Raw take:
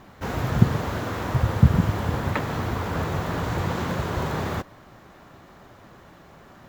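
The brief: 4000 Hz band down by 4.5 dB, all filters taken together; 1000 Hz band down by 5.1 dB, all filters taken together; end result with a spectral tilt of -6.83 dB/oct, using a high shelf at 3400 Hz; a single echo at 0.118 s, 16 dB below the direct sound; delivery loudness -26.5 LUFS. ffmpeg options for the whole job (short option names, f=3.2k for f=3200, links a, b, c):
-af "equalizer=f=1k:t=o:g=-6.5,highshelf=f=3.4k:g=3.5,equalizer=f=4k:t=o:g=-8,aecho=1:1:118:0.158,volume=-1dB"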